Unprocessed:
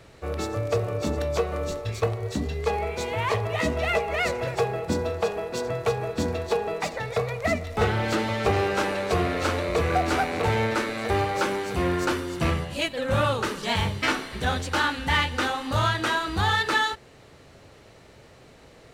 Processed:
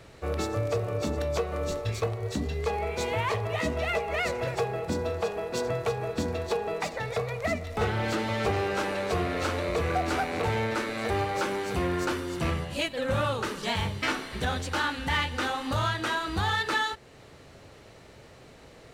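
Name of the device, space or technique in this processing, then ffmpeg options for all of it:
clipper into limiter: -af "asoftclip=type=hard:threshold=-14dB,alimiter=limit=-18.5dB:level=0:latency=1:release=365"

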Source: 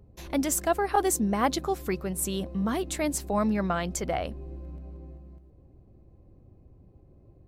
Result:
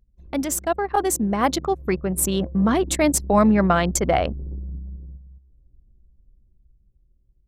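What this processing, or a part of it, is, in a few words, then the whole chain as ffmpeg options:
voice memo with heavy noise removal: -af "anlmdn=6.31,dynaudnorm=framelen=410:gausssize=9:maxgain=8dB,volume=2dB"

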